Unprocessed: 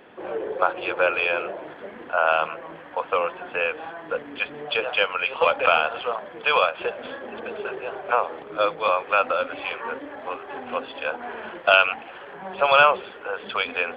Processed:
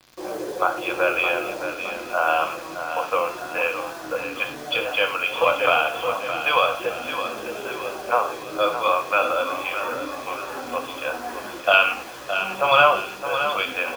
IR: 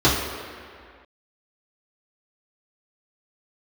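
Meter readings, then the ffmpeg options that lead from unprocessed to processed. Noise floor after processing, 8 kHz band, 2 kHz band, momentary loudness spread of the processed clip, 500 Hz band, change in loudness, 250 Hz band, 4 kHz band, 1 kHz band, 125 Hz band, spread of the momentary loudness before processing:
−36 dBFS, can't be measured, +1.0 dB, 12 LU, +0.5 dB, +0.5 dB, +4.0 dB, +2.0 dB, +1.5 dB, +4.0 dB, 16 LU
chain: -filter_complex "[0:a]acrusher=bits=6:mix=0:aa=0.000001,aecho=1:1:616|1232|1848|2464|3080:0.355|0.163|0.0751|0.0345|0.0159,asplit=2[link_01][link_02];[1:a]atrim=start_sample=2205,afade=type=out:start_time=0.17:duration=0.01,atrim=end_sample=7938,highshelf=frequency=2300:gain=11.5[link_03];[link_02][link_03]afir=irnorm=-1:irlink=0,volume=-26.5dB[link_04];[link_01][link_04]amix=inputs=2:normalize=0,volume=-1.5dB"

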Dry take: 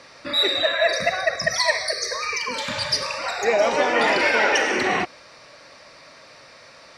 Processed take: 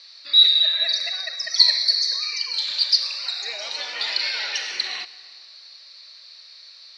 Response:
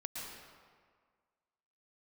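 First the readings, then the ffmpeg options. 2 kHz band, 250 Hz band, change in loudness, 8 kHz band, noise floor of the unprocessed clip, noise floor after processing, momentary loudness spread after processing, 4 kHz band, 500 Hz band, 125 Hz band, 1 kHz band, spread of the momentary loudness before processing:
−10.0 dB, below −25 dB, +2.0 dB, −4.0 dB, −47 dBFS, −46 dBFS, 14 LU, +7.5 dB, −22.5 dB, below −30 dB, −18.0 dB, 7 LU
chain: -filter_complex "[0:a]lowpass=frequency=4200:width_type=q:width=8.6,aderivative,asplit=2[link_01][link_02];[1:a]atrim=start_sample=2205,adelay=126[link_03];[link_02][link_03]afir=irnorm=-1:irlink=0,volume=-18dB[link_04];[link_01][link_04]amix=inputs=2:normalize=0,volume=-1dB"

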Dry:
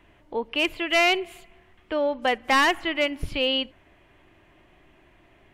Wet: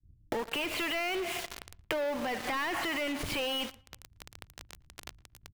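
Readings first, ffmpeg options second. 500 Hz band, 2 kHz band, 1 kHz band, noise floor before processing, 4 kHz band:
−8.5 dB, −9.5 dB, −10.0 dB, −58 dBFS, −9.0 dB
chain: -filter_complex "[0:a]asplit=2[link_01][link_02];[link_02]highpass=frequency=720:poles=1,volume=30dB,asoftclip=type=tanh:threshold=-14.5dB[link_03];[link_01][link_03]amix=inputs=2:normalize=0,lowpass=frequency=2400:poles=1,volume=-6dB,acrossover=split=110[link_04][link_05];[link_05]aeval=exprs='val(0)*gte(abs(val(0)),0.0355)':channel_layout=same[link_06];[link_04][link_06]amix=inputs=2:normalize=0,alimiter=limit=-18.5dB:level=0:latency=1:release=70,acompressor=threshold=-39dB:ratio=6,asplit=2[link_07][link_08];[link_08]adelay=114,lowpass=frequency=3500:poles=1,volume=-22dB,asplit=2[link_09][link_10];[link_10]adelay=114,lowpass=frequency=3500:poles=1,volume=0.49,asplit=2[link_11][link_12];[link_12]adelay=114,lowpass=frequency=3500:poles=1,volume=0.49[link_13];[link_07][link_09][link_11][link_13]amix=inputs=4:normalize=0,agate=range=-33dB:threshold=-54dB:ratio=3:detection=peak,volume=6.5dB"

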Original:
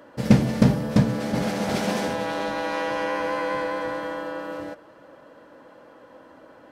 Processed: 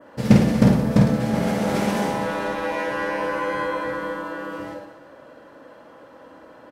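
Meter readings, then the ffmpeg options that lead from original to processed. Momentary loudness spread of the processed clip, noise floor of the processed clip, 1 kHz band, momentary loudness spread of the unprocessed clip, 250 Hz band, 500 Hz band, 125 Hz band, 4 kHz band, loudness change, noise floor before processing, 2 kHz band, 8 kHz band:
15 LU, −47 dBFS, +2.0 dB, 13 LU, +3.5 dB, +2.0 dB, +3.0 dB, −0.5 dB, +2.5 dB, −50 dBFS, +2.5 dB, +0.5 dB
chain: -af "adynamicequalizer=threshold=0.00447:dfrequency=4500:dqfactor=0.89:tfrequency=4500:tqfactor=0.89:attack=5:release=100:ratio=0.375:range=3:mode=cutabove:tftype=bell,aecho=1:1:50|107.5|173.6|249.7|337.1:0.631|0.398|0.251|0.158|0.1,volume=1dB"

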